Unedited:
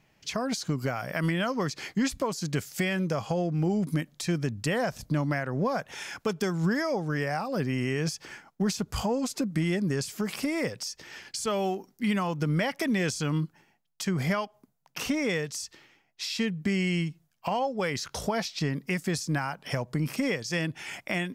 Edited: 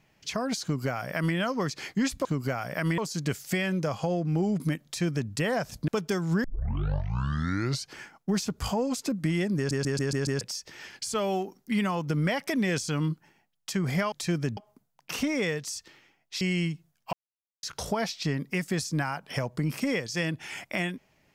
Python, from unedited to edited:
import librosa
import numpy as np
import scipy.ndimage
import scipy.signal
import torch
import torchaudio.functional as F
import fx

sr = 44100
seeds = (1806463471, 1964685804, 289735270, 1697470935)

y = fx.edit(x, sr, fx.duplicate(start_s=0.63, length_s=0.73, to_s=2.25),
    fx.duplicate(start_s=4.12, length_s=0.45, to_s=14.44),
    fx.cut(start_s=5.15, length_s=1.05),
    fx.tape_start(start_s=6.76, length_s=1.53),
    fx.stutter_over(start_s=9.89, slice_s=0.14, count=6),
    fx.cut(start_s=16.28, length_s=0.49),
    fx.silence(start_s=17.49, length_s=0.5), tone=tone)